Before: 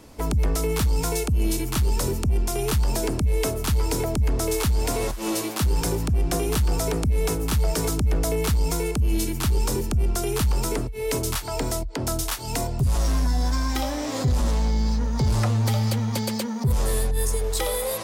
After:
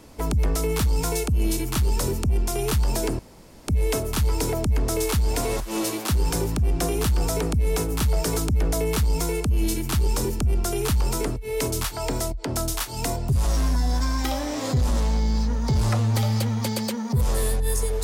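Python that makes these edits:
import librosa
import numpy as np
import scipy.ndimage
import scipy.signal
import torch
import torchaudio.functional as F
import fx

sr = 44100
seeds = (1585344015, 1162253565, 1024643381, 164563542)

y = fx.edit(x, sr, fx.insert_room_tone(at_s=3.19, length_s=0.49), tone=tone)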